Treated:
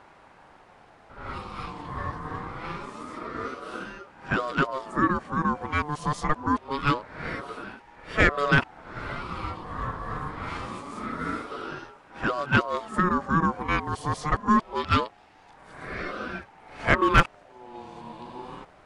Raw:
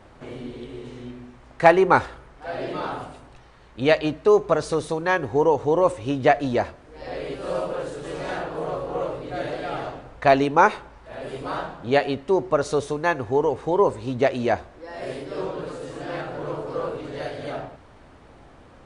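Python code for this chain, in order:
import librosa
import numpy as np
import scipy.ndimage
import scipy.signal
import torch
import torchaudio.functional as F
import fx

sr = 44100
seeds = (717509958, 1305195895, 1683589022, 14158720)

y = x[::-1].copy()
y = fx.cheby_harmonics(y, sr, harmonics=(4, 6), levels_db=(-14, -18), full_scale_db=-1.0)
y = fx.ring_lfo(y, sr, carrier_hz=740.0, swing_pct=20, hz=0.25)
y = y * librosa.db_to_amplitude(-1.5)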